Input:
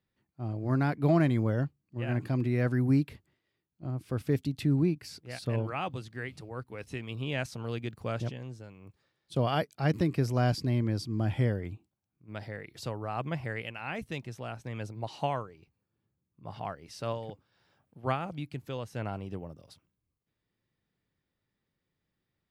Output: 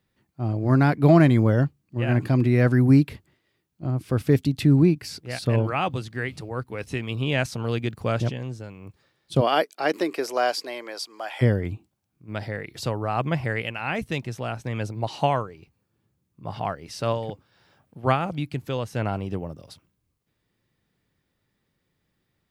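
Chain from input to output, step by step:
0:09.40–0:11.41: high-pass filter 260 Hz → 680 Hz 24 dB per octave
level +9 dB

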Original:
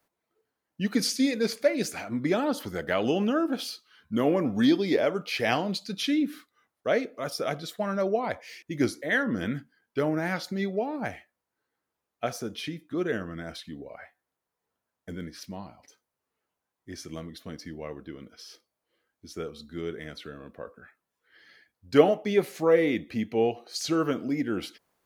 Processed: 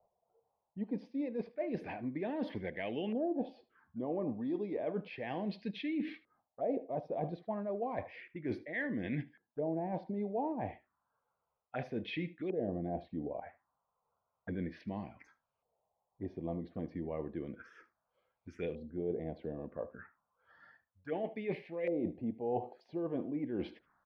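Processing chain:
reversed playback
downward compressor 20 to 1, threshold −34 dBFS, peak gain reduction 23.5 dB
reversed playback
phaser swept by the level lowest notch 280 Hz, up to 1,300 Hz, full sweep at −39 dBFS
wrong playback speed 24 fps film run at 25 fps
single-tap delay 75 ms −19.5 dB
auto-filter low-pass saw up 0.32 Hz 660–2,300 Hz
level +1.5 dB

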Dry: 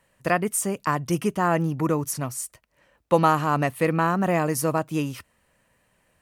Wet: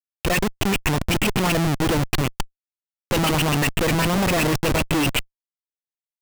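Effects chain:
auto-filter low-pass saw up 7.9 Hz 270–3,600 Hz
high shelf with overshoot 1,900 Hz +12 dB, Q 3
comparator with hysteresis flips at −26.5 dBFS
level +3.5 dB

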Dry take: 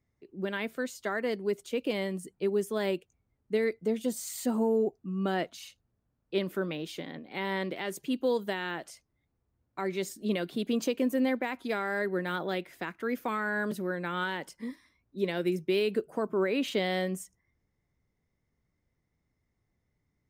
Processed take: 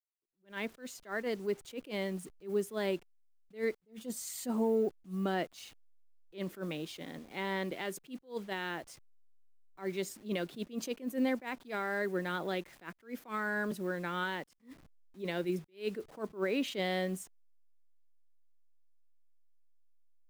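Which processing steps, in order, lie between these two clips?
hold until the input has moved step −50 dBFS
level that may rise only so fast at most 230 dB per second
level −3 dB

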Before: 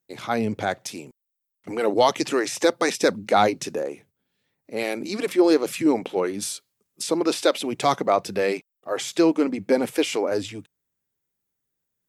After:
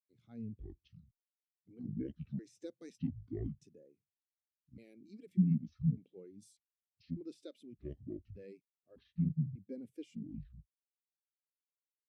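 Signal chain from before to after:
pitch shifter gated in a rhythm −11.5 semitones, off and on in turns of 597 ms
guitar amp tone stack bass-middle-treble 10-0-1
every bin expanded away from the loudest bin 1.5 to 1
level +5 dB

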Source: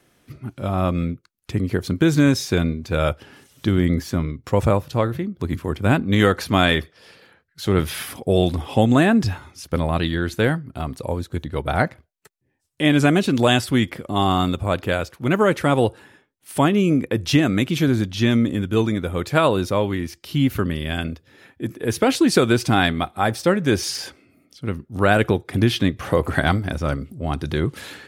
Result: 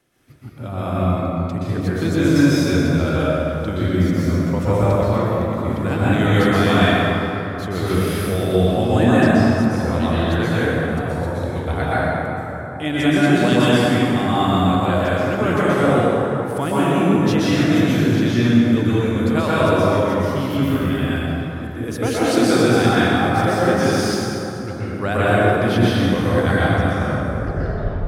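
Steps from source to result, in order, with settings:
turntable brake at the end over 1.18 s
dense smooth reverb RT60 3.7 s, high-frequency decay 0.45×, pre-delay 110 ms, DRR −9.5 dB
level −7.5 dB

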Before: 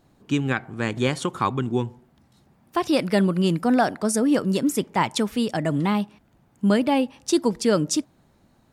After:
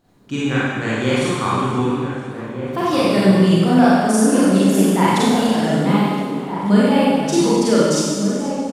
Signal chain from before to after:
slap from a distant wall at 260 metres, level −7 dB
four-comb reverb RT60 1.6 s, combs from 32 ms, DRR −8.5 dB
feedback echo with a swinging delay time 485 ms, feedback 53%, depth 131 cents, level −17.5 dB
level −3 dB

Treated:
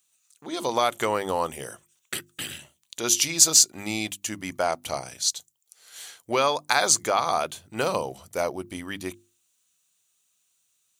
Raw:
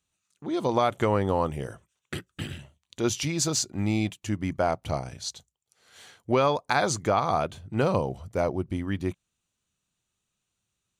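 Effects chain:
RIAA equalisation recording
mains-hum notches 50/100/150/200/250/300/350 Hz
level +1.5 dB

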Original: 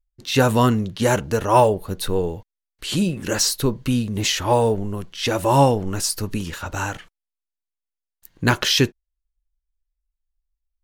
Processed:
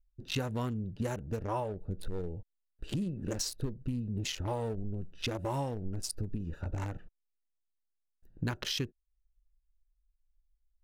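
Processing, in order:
adaptive Wiener filter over 41 samples
low-shelf EQ 110 Hz +7.5 dB
downward compressor 6 to 1, threshold −29 dBFS, peak gain reduction 19 dB
0:01.44–0:01.98: high-shelf EQ 4,800 Hz −7.5 dB
level −3 dB

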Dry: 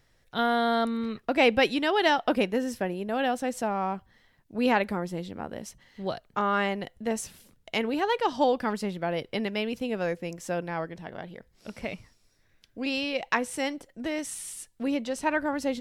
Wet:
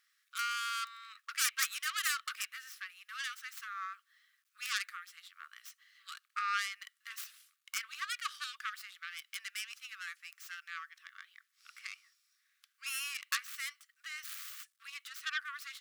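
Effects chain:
stylus tracing distortion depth 0.48 ms
bit reduction 12 bits
linear-phase brick-wall high-pass 1,100 Hz
level −5 dB

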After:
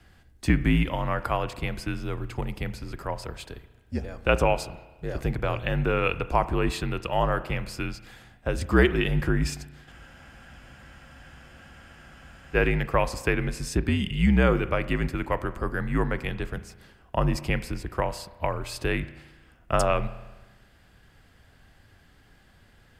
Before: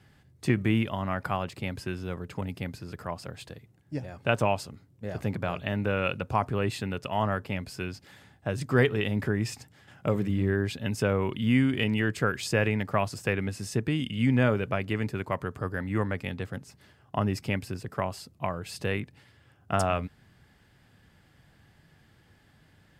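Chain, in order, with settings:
frequency shifter −59 Hz
spring reverb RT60 1.2 s, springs 34 ms, chirp 75 ms, DRR 13.5 dB
frozen spectrum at 0:09.93, 2.61 s
level +3.5 dB

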